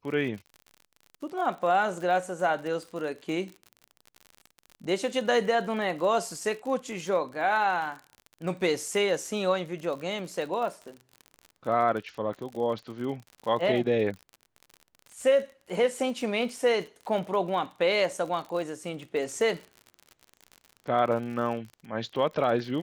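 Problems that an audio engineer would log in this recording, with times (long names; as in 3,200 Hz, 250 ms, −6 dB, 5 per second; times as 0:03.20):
surface crackle 50 per second −36 dBFS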